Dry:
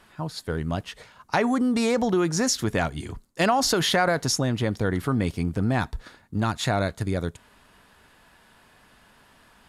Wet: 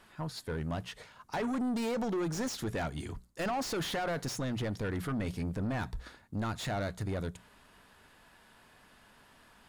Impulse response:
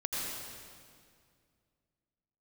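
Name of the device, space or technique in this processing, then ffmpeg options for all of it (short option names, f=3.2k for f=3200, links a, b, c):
saturation between pre-emphasis and de-emphasis: -af "highshelf=f=2.9k:g=11,bandreject=f=60:t=h:w=6,bandreject=f=120:t=h:w=6,bandreject=f=180:t=h:w=6,asoftclip=type=tanh:threshold=-25dB,highshelf=f=2.9k:g=-11,volume=-4dB"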